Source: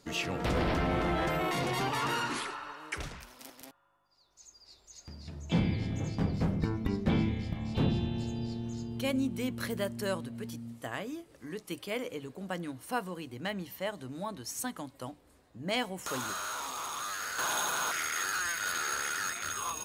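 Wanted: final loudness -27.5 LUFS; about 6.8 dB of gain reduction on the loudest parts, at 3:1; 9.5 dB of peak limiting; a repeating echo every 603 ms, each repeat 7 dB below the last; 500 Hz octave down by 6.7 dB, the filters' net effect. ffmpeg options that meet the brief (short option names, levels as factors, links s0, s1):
-af "equalizer=f=500:t=o:g=-9,acompressor=threshold=0.02:ratio=3,alimiter=level_in=2.11:limit=0.0631:level=0:latency=1,volume=0.473,aecho=1:1:603|1206|1809|2412|3015:0.447|0.201|0.0905|0.0407|0.0183,volume=3.98"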